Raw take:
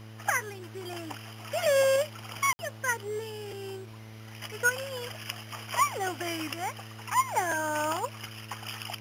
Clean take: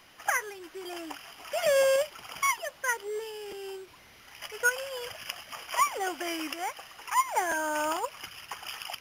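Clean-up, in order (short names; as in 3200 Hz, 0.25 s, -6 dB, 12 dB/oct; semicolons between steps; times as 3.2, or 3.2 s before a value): de-hum 109.8 Hz, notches 16; room tone fill 2.53–2.59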